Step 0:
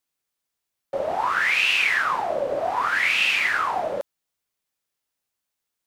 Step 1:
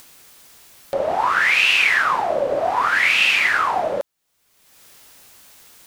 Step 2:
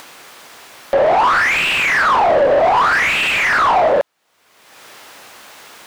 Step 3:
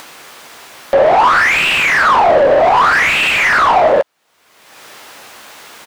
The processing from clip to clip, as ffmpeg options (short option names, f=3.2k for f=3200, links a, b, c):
-af "acompressor=mode=upward:threshold=-28dB:ratio=2.5,volume=4.5dB"
-filter_complex "[0:a]asplit=2[a][b];[b]highpass=f=720:p=1,volume=26dB,asoftclip=type=tanh:threshold=-4dB[c];[a][c]amix=inputs=2:normalize=0,lowpass=f=1.2k:p=1,volume=-6dB"
-filter_complex "[0:a]asplit=2[a][b];[b]adelay=13,volume=-13.5dB[c];[a][c]amix=inputs=2:normalize=0,volume=3dB"